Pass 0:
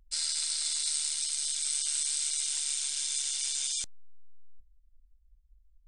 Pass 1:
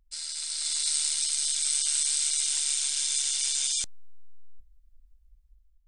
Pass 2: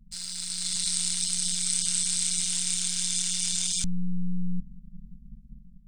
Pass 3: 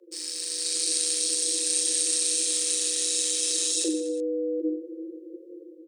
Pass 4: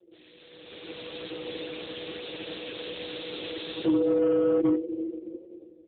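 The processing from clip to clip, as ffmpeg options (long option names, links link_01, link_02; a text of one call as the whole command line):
ffmpeg -i in.wav -af "dynaudnorm=framelen=250:gausssize=5:maxgain=9.5dB,volume=-5dB" out.wav
ffmpeg -i in.wav -filter_complex "[0:a]asplit=2[link_01][link_02];[link_02]acrusher=bits=6:mix=0:aa=0.000001,volume=-9dB[link_03];[link_01][link_03]amix=inputs=2:normalize=0,lowshelf=frequency=140:width_type=q:width=1.5:gain=14,tremolo=f=180:d=0.71" out.wav
ffmpeg -i in.wav -filter_complex "[0:a]afreqshift=310,asplit=2[link_01][link_02];[link_02]aecho=0:1:40|92|159.6|247.5|361.7:0.631|0.398|0.251|0.158|0.1[link_03];[link_01][link_03]amix=inputs=2:normalize=0" out.wav
ffmpeg -i in.wav -af "volume=26dB,asoftclip=hard,volume=-26dB,dynaudnorm=framelen=240:gausssize=7:maxgain=10.5dB,volume=-3.5dB" -ar 8000 -c:a libopencore_amrnb -b:a 5900 out.amr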